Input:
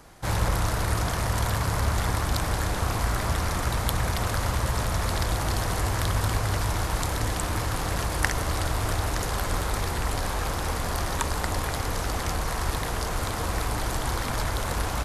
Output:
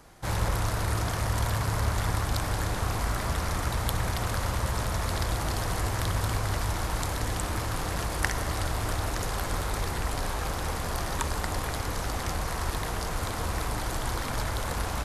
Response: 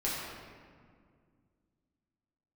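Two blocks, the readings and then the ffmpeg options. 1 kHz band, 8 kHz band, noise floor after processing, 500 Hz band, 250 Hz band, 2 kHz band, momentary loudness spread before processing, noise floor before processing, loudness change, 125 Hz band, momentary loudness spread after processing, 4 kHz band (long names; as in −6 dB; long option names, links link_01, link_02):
−2.5 dB, −3.0 dB, −32 dBFS, −2.5 dB, −2.5 dB, −3.0 dB, 3 LU, −30 dBFS, −2.5 dB, −2.5 dB, 3 LU, −3.0 dB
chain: -filter_complex "[0:a]asplit=2[link_01][link_02];[1:a]atrim=start_sample=2205,adelay=61[link_03];[link_02][link_03]afir=irnorm=-1:irlink=0,volume=-19dB[link_04];[link_01][link_04]amix=inputs=2:normalize=0,volume=-3dB"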